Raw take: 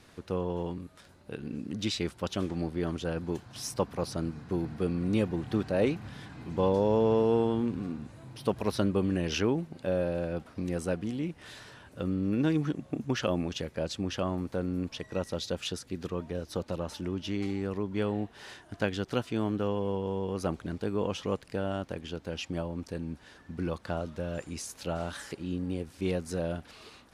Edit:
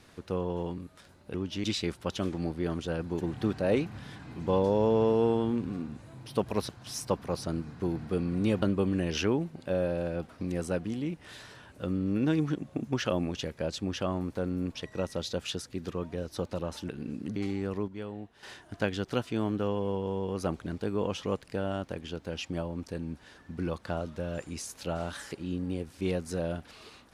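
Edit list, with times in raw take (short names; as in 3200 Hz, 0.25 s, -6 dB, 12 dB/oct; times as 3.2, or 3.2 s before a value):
1.34–1.81 swap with 17.06–17.36
3.38–5.31 move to 8.79
17.88–18.43 gain -9 dB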